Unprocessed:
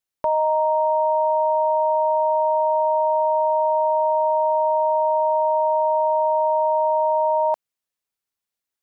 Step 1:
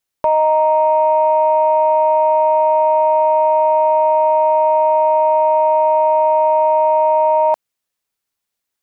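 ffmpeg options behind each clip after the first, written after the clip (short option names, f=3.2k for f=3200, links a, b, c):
-af "acontrast=69"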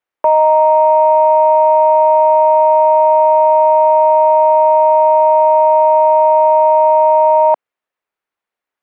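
-filter_complex "[0:a]acrossover=split=300 2500:gain=0.224 1 0.112[a][b][c];[a][b][c]amix=inputs=3:normalize=0,volume=4dB"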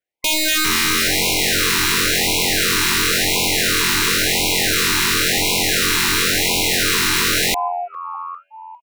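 -filter_complex "[0:a]asplit=6[a][b][c][d][e][f];[b]adelay=402,afreqshift=87,volume=-8.5dB[g];[c]adelay=804,afreqshift=174,volume=-14.9dB[h];[d]adelay=1206,afreqshift=261,volume=-21.3dB[i];[e]adelay=1608,afreqshift=348,volume=-27.6dB[j];[f]adelay=2010,afreqshift=435,volume=-34dB[k];[a][g][h][i][j][k]amix=inputs=6:normalize=0,aeval=exprs='(mod(2.82*val(0)+1,2)-1)/2.82':c=same,afftfilt=real='re*(1-between(b*sr/1024,580*pow(1500/580,0.5+0.5*sin(2*PI*0.95*pts/sr))/1.41,580*pow(1500/580,0.5+0.5*sin(2*PI*0.95*pts/sr))*1.41))':imag='im*(1-between(b*sr/1024,580*pow(1500/580,0.5+0.5*sin(2*PI*0.95*pts/sr))/1.41,580*pow(1500/580,0.5+0.5*sin(2*PI*0.95*pts/sr))*1.41))':win_size=1024:overlap=0.75,volume=-3dB"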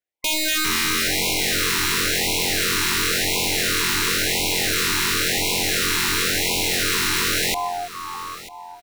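-af "aecho=1:1:944|1888:0.15|0.0239,volume=-4dB"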